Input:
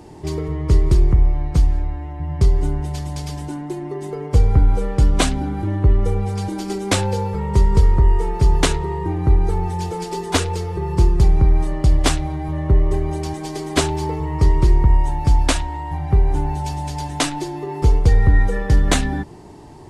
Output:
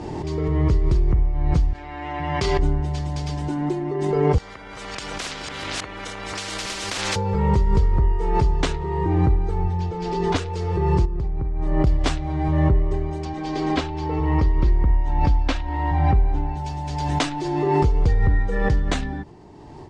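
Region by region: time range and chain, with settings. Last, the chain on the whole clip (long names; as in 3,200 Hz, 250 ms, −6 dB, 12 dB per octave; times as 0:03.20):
0:01.73–0:02.59: high-pass filter 810 Hz 6 dB per octave + parametric band 2,700 Hz +5 dB 1.5 octaves
0:04.38–0:07.16: delay that plays each chunk backwards 285 ms, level −4.5 dB + downward compressor 12 to 1, threshold −20 dBFS + every bin compressed towards the loudest bin 10 to 1
0:09.63–0:10.36: low-pass filter 5,400 Hz + low-shelf EQ 130 Hz +10 dB
0:11.05–0:11.87: high-shelf EQ 2,700 Hz −11 dB + downward compressor 4 to 1, threshold −17 dBFS
0:13.25–0:16.57: low-pass filter 4,900 Hz + comb filter 3.8 ms, depth 35%
whole clip: automatic gain control; Bessel low-pass filter 5,300 Hz, order 4; background raised ahead of every attack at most 25 dB per second; level −8.5 dB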